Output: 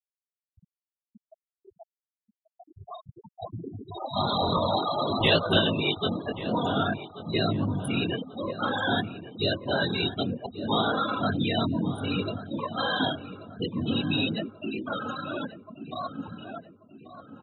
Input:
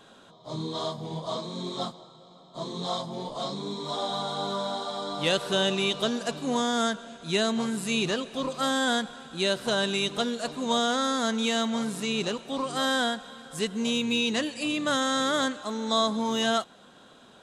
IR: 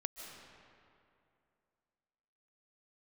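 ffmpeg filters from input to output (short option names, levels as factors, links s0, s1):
-filter_complex "[0:a]highshelf=f=9800:g=-3,dynaudnorm=f=340:g=17:m=5.01,bandreject=f=88.42:t=h:w=4,bandreject=f=176.84:t=h:w=4,bandreject=f=265.26:t=h:w=4,asettb=1/sr,asplit=3[s0][s1][s2];[s0]atrim=end=4.164[s3];[s1]atrim=start=4.16:end=5.59,asetpts=PTS-STARTPTS,afade=t=in:d=0.004:c=qsin,afade=t=out:st=1.426:d=0.004:c=qsin,acontrast=86[s4];[s2]atrim=start=5.586[s5];[s3][s4]acrossfade=d=0.004:c1=hsin:c2=qsin[s6];[s6][s5]acrossfade=d=0.004:c1=qsin:c2=hsin,afftfilt=real='hypot(re,im)*cos(2*PI*random(0))':imag='hypot(re,im)*sin(2*PI*random(1))':win_size=512:overlap=0.75,flanger=delay=18:depth=4.8:speed=0.55,equalizer=f=100:t=o:w=0.33:g=9,equalizer=f=500:t=o:w=0.33:g=-4,equalizer=f=10000:t=o:w=0.33:g=11,afftfilt=real='re*gte(hypot(re,im),0.112)':imag='im*gte(hypot(re,im),0.112)':win_size=1024:overlap=0.75,asplit=2[s7][s8];[s8]adelay=1135,lowpass=f=2100:p=1,volume=0.224,asplit=2[s9][s10];[s10]adelay=1135,lowpass=f=2100:p=1,volume=0.53,asplit=2[s11][s12];[s12]adelay=1135,lowpass=f=2100:p=1,volume=0.53,asplit=2[s13][s14];[s14]adelay=1135,lowpass=f=2100:p=1,volume=0.53,asplit=2[s15][s16];[s16]adelay=1135,lowpass=f=2100:p=1,volume=0.53[s17];[s7][s9][s11][s13][s15][s17]amix=inputs=6:normalize=0,volume=0.794"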